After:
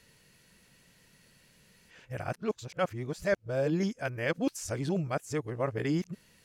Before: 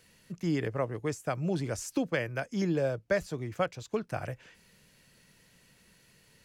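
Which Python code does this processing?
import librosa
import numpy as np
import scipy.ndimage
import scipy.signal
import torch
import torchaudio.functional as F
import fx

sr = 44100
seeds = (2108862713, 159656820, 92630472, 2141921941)

y = x[::-1].copy()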